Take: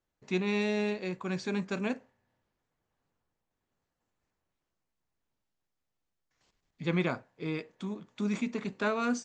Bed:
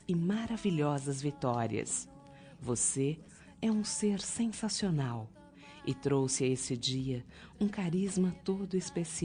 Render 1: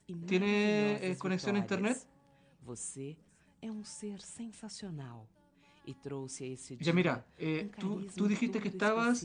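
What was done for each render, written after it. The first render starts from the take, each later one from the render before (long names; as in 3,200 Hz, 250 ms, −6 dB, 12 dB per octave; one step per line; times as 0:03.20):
mix in bed −11.5 dB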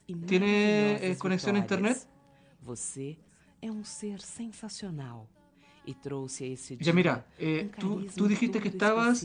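level +5 dB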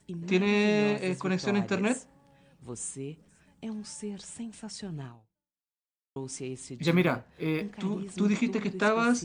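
0:05.06–0:06.16: fade out exponential
0:06.87–0:07.64: linearly interpolated sample-rate reduction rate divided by 3×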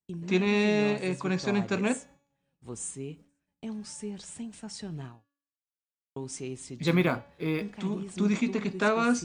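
downward expander −47 dBFS
hum removal 283.9 Hz, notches 24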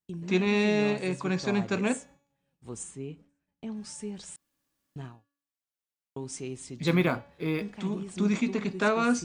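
0:02.83–0:03.77: low-pass filter 3,300 Hz 6 dB per octave
0:04.36–0:04.96: fill with room tone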